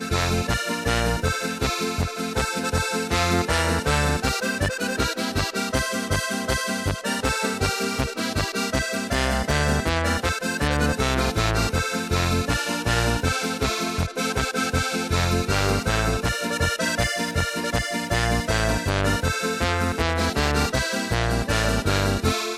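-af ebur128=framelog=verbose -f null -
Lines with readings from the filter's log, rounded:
Integrated loudness:
  I:         -23.3 LUFS
  Threshold: -33.3 LUFS
Loudness range:
  LRA:         1.5 LU
  Threshold: -43.3 LUFS
  LRA low:   -24.3 LUFS
  LRA high:  -22.7 LUFS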